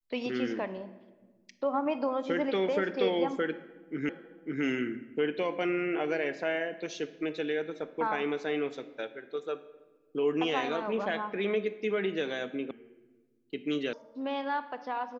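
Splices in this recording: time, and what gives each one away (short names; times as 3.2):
4.09 repeat of the last 0.55 s
12.71 sound cut off
13.93 sound cut off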